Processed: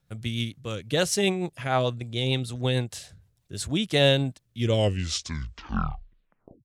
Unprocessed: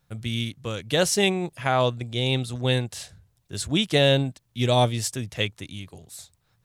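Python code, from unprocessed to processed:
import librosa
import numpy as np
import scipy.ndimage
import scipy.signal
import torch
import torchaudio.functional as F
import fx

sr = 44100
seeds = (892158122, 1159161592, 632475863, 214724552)

y = fx.tape_stop_end(x, sr, length_s=2.11)
y = fx.rotary_switch(y, sr, hz=6.7, then_hz=0.75, switch_at_s=3.15)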